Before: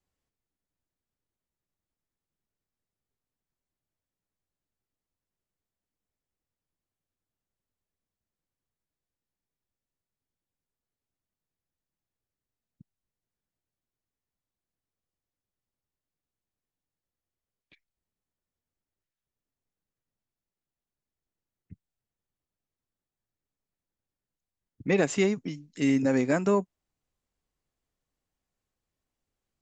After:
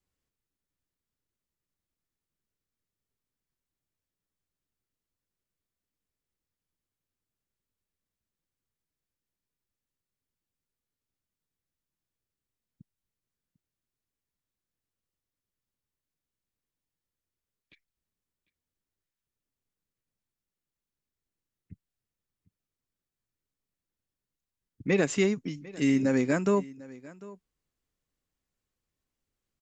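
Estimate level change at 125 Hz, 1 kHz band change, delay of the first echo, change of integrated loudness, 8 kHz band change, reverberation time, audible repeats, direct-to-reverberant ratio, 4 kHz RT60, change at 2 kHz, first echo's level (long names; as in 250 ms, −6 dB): 0.0 dB, −2.5 dB, 748 ms, −1.0 dB, 0.0 dB, no reverb audible, 1, no reverb audible, no reverb audible, −0.5 dB, −20.5 dB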